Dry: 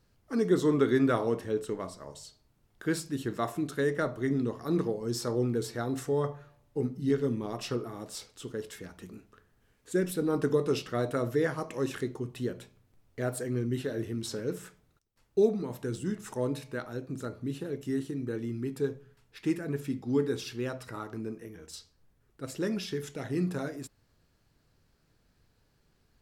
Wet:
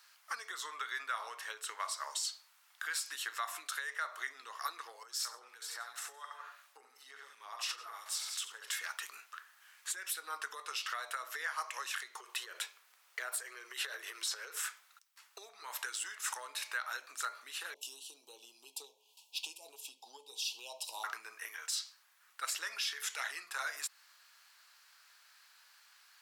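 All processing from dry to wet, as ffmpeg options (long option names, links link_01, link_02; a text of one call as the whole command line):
ffmpeg -i in.wav -filter_complex "[0:a]asettb=1/sr,asplit=3[link_01][link_02][link_03];[link_01]atrim=end=5.034[link_04];[link_02]atrim=start=5.03:end=8.68,asetpts=PTS-STARTPTS,afade=type=in:duration=0.004:curve=qsin,afade=type=out:start_time=3.646:duration=0.004:curve=qsin,aecho=1:1:68|161:0.531|0.211,atrim=end_sample=160965,acompressor=threshold=-43dB:ratio=6:attack=3.2:release=140:knee=1:detection=peak,acrossover=split=1400[link_05][link_06];[link_05]aeval=exprs='val(0)*(1-0.5/2+0.5/2*cos(2*PI*2.8*n/s))':channel_layout=same[link_07];[link_06]aeval=exprs='val(0)*(1-0.5/2-0.5/2*cos(2*PI*2.8*n/s))':channel_layout=same[link_08];[link_07][link_08]amix=inputs=2:normalize=0[link_09];[link_03]atrim=start=8.676[link_10];[link_04][link_09]acrossfade=duration=0.004:curve1=hsin:curve2=qsin[link_11];[link_11][link_10]acrossfade=duration=0.004:curve1=qsin:curve2=hsin,asettb=1/sr,asplit=3[link_12][link_13][link_14];[link_12]atrim=end=12.184[link_15];[link_13]atrim=start=12.18:end=14.6,asetpts=PTS-STARTPTS,afade=type=in:duration=0.004:curve=qsin,afade=type=out:start_time=2.416:duration=0.004:curve=qsin,lowshelf=frequency=270:width_type=q:width=3:gain=-12,acompressor=threshold=-35dB:ratio=4:attack=3.2:release=140:knee=1:detection=peak[link_16];[link_14]atrim=start=14.596[link_17];[link_15][link_16]acrossfade=duration=0.004:curve1=hsin:curve2=qsin[link_18];[link_18][link_17]acrossfade=duration=0.004:curve1=qsin:curve2=hsin,asettb=1/sr,asplit=3[link_19][link_20][link_21];[link_19]atrim=end=17.744[link_22];[link_20]atrim=start=17.74:end=21.04,asetpts=PTS-STARTPTS,afade=type=in:duration=0.004:curve=qsin,afade=type=out:start_time=3.296:duration=0.004:curve=qsin,asuperstop=centerf=1600:order=12:qfactor=0.92,adynamicequalizer=threshold=0.00355:dfrequency=1500:dqfactor=0.7:tfrequency=1500:tqfactor=0.7:attack=5:release=100:ratio=0.375:range=3:mode=cutabove:tftype=highshelf[link_23];[link_21]atrim=start=21.036[link_24];[link_22][link_23]acrossfade=duration=0.004:curve1=hsin:curve2=qsin[link_25];[link_25][link_24]acrossfade=duration=0.004:curve1=qsin:curve2=hsin,acompressor=threshold=-36dB:ratio=12,highpass=frequency=1100:width=0.5412,highpass=frequency=1100:width=1.3066,alimiter=level_in=15.5dB:limit=-24dB:level=0:latency=1:release=154,volume=-15.5dB,volume=14dB" out.wav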